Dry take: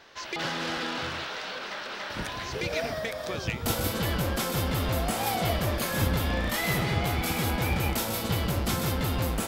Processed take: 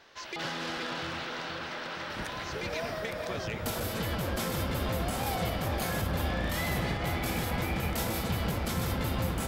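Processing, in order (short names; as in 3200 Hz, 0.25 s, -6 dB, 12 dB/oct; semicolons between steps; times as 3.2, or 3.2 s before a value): limiter -20 dBFS, peak gain reduction 7 dB; dark delay 0.47 s, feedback 73%, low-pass 2200 Hz, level -5 dB; gain -4 dB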